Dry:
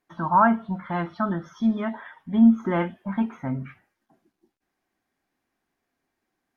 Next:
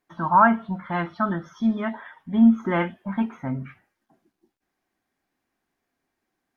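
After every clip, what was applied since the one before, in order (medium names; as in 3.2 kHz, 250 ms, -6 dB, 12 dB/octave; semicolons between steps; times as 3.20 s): dynamic bell 2.2 kHz, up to +5 dB, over -37 dBFS, Q 0.7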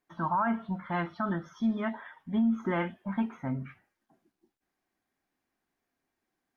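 peak limiter -16 dBFS, peak gain reduction 11 dB; trim -4.5 dB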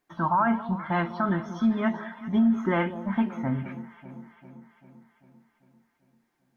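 echo whose repeats swap between lows and highs 197 ms, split 950 Hz, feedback 76%, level -13 dB; trim +5 dB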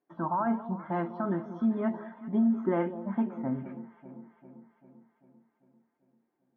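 band-pass filter 400 Hz, Q 0.97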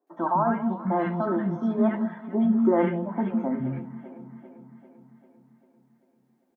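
three bands offset in time mids, highs, lows 70/160 ms, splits 240/1300 Hz; trim +8 dB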